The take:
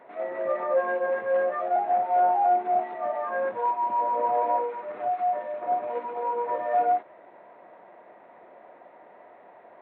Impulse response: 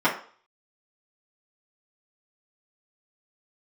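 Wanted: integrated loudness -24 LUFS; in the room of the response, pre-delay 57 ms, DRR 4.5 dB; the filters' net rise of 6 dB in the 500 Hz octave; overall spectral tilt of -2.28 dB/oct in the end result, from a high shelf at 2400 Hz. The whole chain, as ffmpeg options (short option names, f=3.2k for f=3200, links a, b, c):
-filter_complex "[0:a]equalizer=f=500:t=o:g=7.5,highshelf=f=2.4k:g=-3,asplit=2[a][b];[1:a]atrim=start_sample=2205,adelay=57[c];[b][c]afir=irnorm=-1:irlink=0,volume=-21.5dB[d];[a][d]amix=inputs=2:normalize=0,volume=-2.5dB"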